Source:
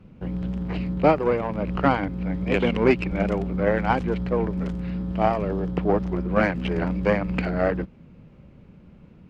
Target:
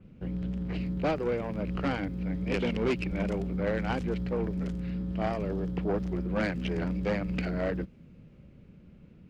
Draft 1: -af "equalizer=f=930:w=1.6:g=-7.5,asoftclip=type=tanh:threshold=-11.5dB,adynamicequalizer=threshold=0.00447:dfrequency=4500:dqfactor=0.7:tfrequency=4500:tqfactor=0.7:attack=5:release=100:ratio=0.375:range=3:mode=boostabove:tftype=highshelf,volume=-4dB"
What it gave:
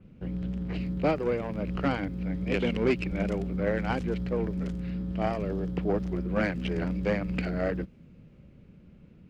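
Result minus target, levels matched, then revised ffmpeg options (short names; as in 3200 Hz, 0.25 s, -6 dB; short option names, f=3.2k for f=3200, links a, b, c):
soft clip: distortion -7 dB
-af "equalizer=f=930:w=1.6:g=-7.5,asoftclip=type=tanh:threshold=-18dB,adynamicequalizer=threshold=0.00447:dfrequency=4500:dqfactor=0.7:tfrequency=4500:tqfactor=0.7:attack=5:release=100:ratio=0.375:range=3:mode=boostabove:tftype=highshelf,volume=-4dB"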